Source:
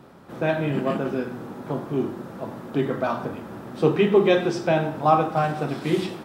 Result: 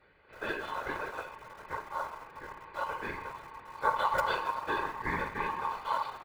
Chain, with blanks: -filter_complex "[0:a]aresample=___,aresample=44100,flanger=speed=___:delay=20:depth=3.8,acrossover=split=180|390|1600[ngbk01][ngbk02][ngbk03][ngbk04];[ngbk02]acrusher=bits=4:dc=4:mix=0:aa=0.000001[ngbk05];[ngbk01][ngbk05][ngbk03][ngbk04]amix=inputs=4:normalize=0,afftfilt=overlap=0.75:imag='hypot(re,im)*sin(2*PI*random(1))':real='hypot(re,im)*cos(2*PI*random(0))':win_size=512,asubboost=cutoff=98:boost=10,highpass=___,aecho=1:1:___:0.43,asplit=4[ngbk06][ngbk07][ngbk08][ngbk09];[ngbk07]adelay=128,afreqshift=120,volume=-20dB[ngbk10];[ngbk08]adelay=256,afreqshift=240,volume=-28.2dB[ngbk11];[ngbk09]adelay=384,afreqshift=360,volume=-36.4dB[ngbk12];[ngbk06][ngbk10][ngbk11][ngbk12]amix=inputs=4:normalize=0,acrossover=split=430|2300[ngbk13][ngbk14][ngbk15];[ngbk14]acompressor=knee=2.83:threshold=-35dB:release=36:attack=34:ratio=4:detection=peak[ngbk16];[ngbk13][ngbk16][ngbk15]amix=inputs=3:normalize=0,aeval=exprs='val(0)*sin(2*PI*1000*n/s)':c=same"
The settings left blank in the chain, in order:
8000, 0.51, 67, 2